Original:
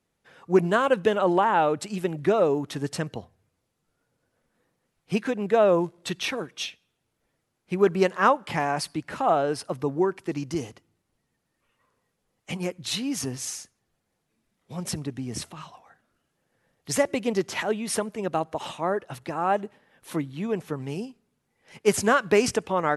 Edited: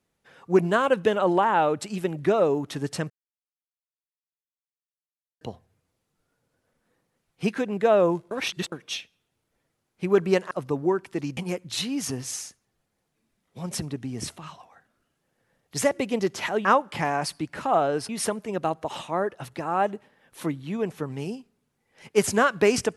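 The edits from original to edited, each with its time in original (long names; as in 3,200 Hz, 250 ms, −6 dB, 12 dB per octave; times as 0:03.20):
0:03.10: splice in silence 2.31 s
0:06.00–0:06.41: reverse
0:08.20–0:09.64: move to 0:17.79
0:10.50–0:12.51: remove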